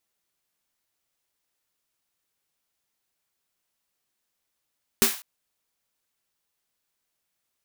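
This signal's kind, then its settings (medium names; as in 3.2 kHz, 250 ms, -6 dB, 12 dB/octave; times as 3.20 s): snare drum length 0.20 s, tones 230 Hz, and 390 Hz, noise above 770 Hz, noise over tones 3 dB, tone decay 0.16 s, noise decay 0.39 s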